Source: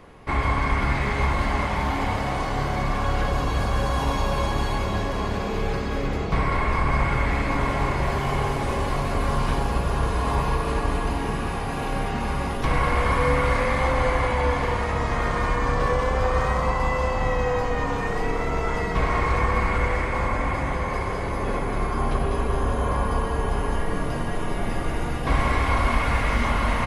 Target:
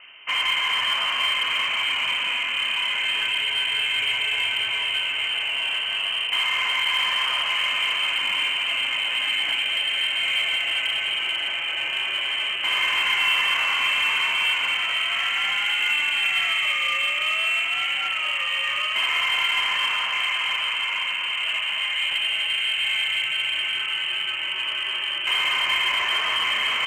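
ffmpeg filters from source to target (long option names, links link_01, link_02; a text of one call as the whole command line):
ffmpeg -i in.wav -filter_complex "[0:a]highpass=68,lowpass=frequency=2700:width_type=q:width=0.5098,lowpass=frequency=2700:width_type=q:width=0.6013,lowpass=frequency=2700:width_type=q:width=0.9,lowpass=frequency=2700:width_type=q:width=2.563,afreqshift=-3200,asplit=2[link_01][link_02];[link_02]aeval=exprs='0.0596*(abs(mod(val(0)/0.0596+3,4)-2)-1)':channel_layout=same,volume=-12dB[link_03];[link_01][link_03]amix=inputs=2:normalize=0" out.wav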